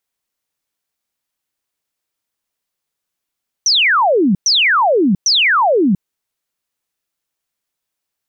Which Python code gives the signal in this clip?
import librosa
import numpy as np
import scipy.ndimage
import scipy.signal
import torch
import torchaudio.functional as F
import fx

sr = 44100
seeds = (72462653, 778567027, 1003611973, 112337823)

y = fx.laser_zaps(sr, level_db=-9.5, start_hz=6200.0, end_hz=170.0, length_s=0.69, wave='sine', shots=3, gap_s=0.11)